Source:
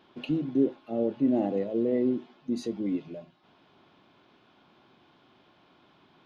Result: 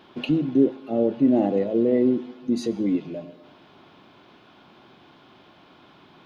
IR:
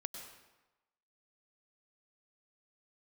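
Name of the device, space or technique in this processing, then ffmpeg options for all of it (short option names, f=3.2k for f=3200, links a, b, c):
ducked reverb: -filter_complex "[0:a]asplit=3[a][b][c];[1:a]atrim=start_sample=2205[d];[b][d]afir=irnorm=-1:irlink=0[e];[c]apad=whole_len=275787[f];[e][f]sidechaincompress=threshold=-33dB:ratio=8:attack=16:release=686,volume=-2.5dB[g];[a][g]amix=inputs=2:normalize=0,volume=5dB"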